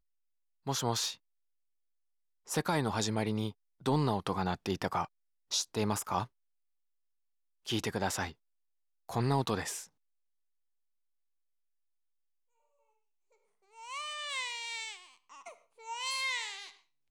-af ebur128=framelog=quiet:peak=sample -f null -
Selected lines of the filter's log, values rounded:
Integrated loudness:
  I:         -34.3 LUFS
  Threshold: -45.1 LUFS
Loudness range:
  LRA:         8.2 LU
  Threshold: -56.7 LUFS
  LRA low:   -41.8 LUFS
  LRA high:  -33.6 LUFS
Sample peak:
  Peak:      -17.7 dBFS